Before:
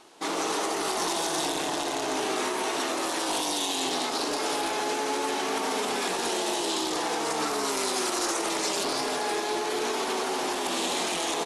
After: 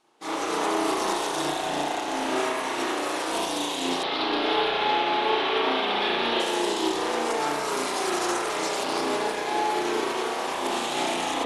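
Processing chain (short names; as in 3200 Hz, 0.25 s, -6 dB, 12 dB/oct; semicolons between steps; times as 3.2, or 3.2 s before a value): 4.03–6.4 resonant high shelf 5200 Hz -14 dB, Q 3; spring tank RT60 1.1 s, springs 34 ms, chirp 55 ms, DRR -5 dB; upward expander 1.5:1, over -46 dBFS; gain -2 dB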